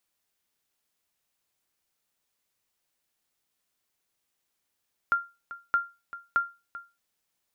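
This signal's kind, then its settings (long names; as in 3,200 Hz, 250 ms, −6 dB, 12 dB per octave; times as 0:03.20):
ping with an echo 1,390 Hz, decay 0.27 s, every 0.62 s, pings 3, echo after 0.39 s, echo −16 dB −16 dBFS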